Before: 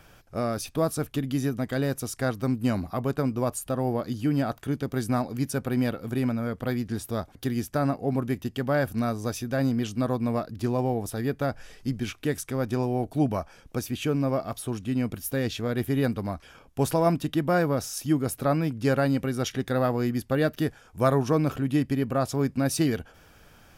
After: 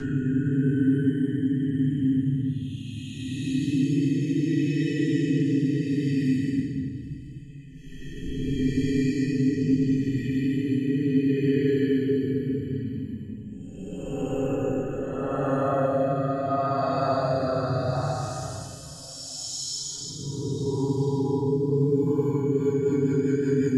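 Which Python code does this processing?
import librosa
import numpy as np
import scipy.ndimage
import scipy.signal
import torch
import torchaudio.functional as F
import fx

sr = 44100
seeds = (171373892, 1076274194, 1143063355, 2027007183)

y = fx.noise_reduce_blind(x, sr, reduce_db=22)
y = fx.paulstretch(y, sr, seeds[0], factor=28.0, window_s=0.05, from_s=21.6)
y = fx.rider(y, sr, range_db=3, speed_s=0.5)
y = fx.lowpass_res(y, sr, hz=7000.0, q=2.3)
y = fx.echo_stepped(y, sr, ms=196, hz=550.0, octaves=1.4, feedback_pct=70, wet_db=-9.0)
y = fx.rotary_switch(y, sr, hz=0.75, then_hz=5.5, switch_at_s=22.1)
y = fx.room_shoebox(y, sr, seeds[1], volume_m3=150.0, walls='furnished', distance_m=3.9)
y = fx.band_squash(y, sr, depth_pct=40)
y = y * librosa.db_to_amplitude(-8.0)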